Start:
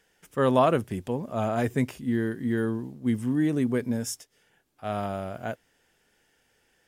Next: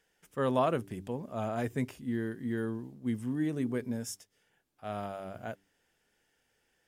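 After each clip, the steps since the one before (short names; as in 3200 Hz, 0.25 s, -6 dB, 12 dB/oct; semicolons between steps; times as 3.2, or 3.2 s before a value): de-hum 97.7 Hz, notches 4; gain -7 dB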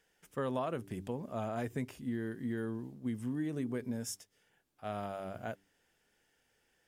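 compressor 4:1, threshold -33 dBFS, peak gain reduction 9 dB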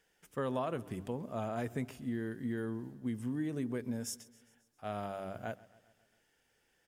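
feedback echo 0.134 s, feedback 59%, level -21.5 dB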